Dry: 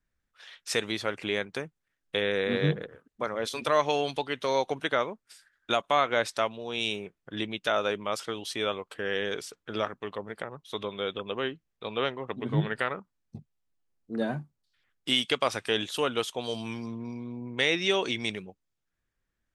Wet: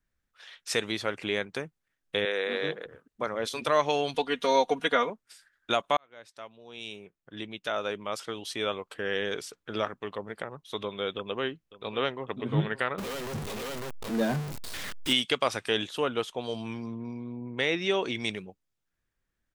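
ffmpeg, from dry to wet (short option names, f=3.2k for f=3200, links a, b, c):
-filter_complex "[0:a]asettb=1/sr,asplit=3[a][b][c];[a]atrim=end=2.254[d];[b]atrim=start=2.25:end=2.86,asetpts=PTS-STARTPTS,afade=t=in:d=0.004:c=qsin,afade=t=out:st=0.606:d=0.004:c=qsin,highpass=420[e];[c]atrim=start=2.856[f];[d][e]acrossfade=d=0.004:c1=hsin:c2=qsin[g];[g][f]acrossfade=d=0.004:c1=qsin:c2=hsin,asettb=1/sr,asplit=3[h][i][j];[h]atrim=end=4.144[k];[i]atrim=start=4.14:end=5.1,asetpts=PTS-STARTPTS,afade=t=in:d=0.004:c=qsin,afade=t=out:st=0.956:d=0.004:c=qsin,aecho=1:1:4.2:0.96,atrim=end_sample=42336[l];[j]atrim=start=5.096[m];[k][l]acrossfade=d=0.004:c1=hsin:c2=qsin[n];[n][m]acrossfade=d=0.004:c1=qsin:c2=hsin,asplit=2[o][p];[p]afade=t=in:st=11.16:d=0.01,afade=t=out:st=12.25:d=0.01,aecho=0:1:550|1100|1650|2200:0.149624|0.0748118|0.0374059|0.0187029[q];[o][q]amix=inputs=2:normalize=0,asettb=1/sr,asplit=3[r][s][t];[r]atrim=end=12.984[u];[s]atrim=start=12.98:end=15.13,asetpts=PTS-STARTPTS,afade=t=in:d=0.004:c=qsin,afade=t=out:st=2.146:d=0.004:c=qsin,aeval=exprs='val(0)+0.5*0.0316*sgn(val(0))':c=same[v];[t]atrim=start=15.126[w];[u][v]acrossfade=d=0.004:c1=hsin:c2=qsin[x];[x][w]acrossfade=d=0.004:c1=qsin:c2=hsin,asettb=1/sr,asplit=3[y][z][aa];[y]atrim=end=15.874[ab];[z]atrim=start=15.87:end=18.15,asetpts=PTS-STARTPTS,afade=t=in:d=0.004:c=qsin,afade=t=out:st=2.276:d=0.004:c=qsin,highshelf=f=3.4k:g=-9[ac];[aa]atrim=start=18.146[ad];[ab][ac]acrossfade=d=0.004:c1=hsin:c2=qsin[ae];[ae][ad]acrossfade=d=0.004:c1=qsin:c2=hsin,asplit=2[af][ag];[af]atrim=end=5.97,asetpts=PTS-STARTPTS,afade=t=out:st=5.966:d=0.004:c=hsin[ah];[ag]atrim=start=5.97,asetpts=PTS-STARTPTS,afade=t=in:d=2.91[ai];[ah][ai]concat=n=2:v=0:a=1"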